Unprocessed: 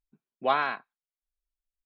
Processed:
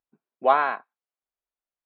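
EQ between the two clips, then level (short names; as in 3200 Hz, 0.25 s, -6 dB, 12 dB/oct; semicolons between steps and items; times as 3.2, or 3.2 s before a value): band-pass 720 Hz, Q 0.77; +7.0 dB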